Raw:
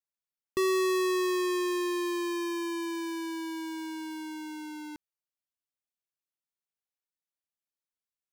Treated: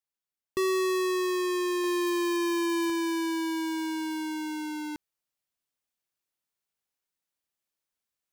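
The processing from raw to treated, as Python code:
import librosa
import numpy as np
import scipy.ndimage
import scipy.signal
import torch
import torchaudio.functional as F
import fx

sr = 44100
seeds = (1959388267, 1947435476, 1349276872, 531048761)

y = fx.rider(x, sr, range_db=3, speed_s=0.5)
y = fx.quant_dither(y, sr, seeds[0], bits=6, dither='none', at=(1.84, 2.9))
y = y * 10.0 ** (3.0 / 20.0)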